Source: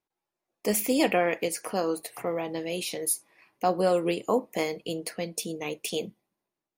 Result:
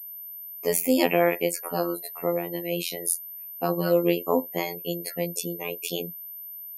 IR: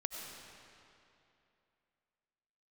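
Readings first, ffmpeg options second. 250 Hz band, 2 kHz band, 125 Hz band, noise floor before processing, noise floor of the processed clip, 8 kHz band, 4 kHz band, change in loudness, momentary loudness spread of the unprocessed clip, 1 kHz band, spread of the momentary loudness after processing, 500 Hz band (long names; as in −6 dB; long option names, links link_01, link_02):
+2.5 dB, +1.5 dB, +4.5 dB, below −85 dBFS, −40 dBFS, +1.0 dB, +1.0 dB, +1.5 dB, 10 LU, −0.5 dB, 14 LU, +2.0 dB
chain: -af "afftdn=noise_reduction=17:noise_floor=-41,aeval=exprs='val(0)+0.00794*sin(2*PI*13000*n/s)':channel_layout=same,afftfilt=real='hypot(re,im)*cos(PI*b)':imag='0':win_size=2048:overlap=0.75,volume=5.5dB"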